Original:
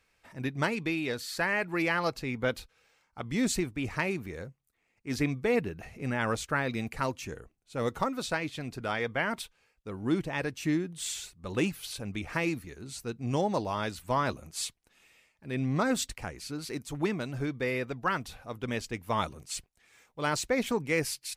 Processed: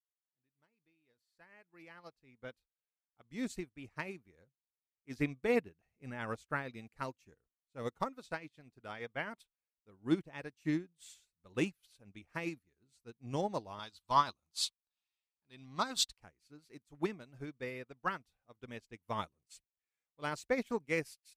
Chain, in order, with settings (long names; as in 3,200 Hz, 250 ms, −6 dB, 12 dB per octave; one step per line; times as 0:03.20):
fade in at the beginning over 4.30 s
0:13.79–0:16.20: graphic EQ with 10 bands 125 Hz −5 dB, 250 Hz −3 dB, 500 Hz −8 dB, 1,000 Hz +7 dB, 2,000 Hz −6 dB, 4,000 Hz +12 dB
expander for the loud parts 2.5 to 1, over −45 dBFS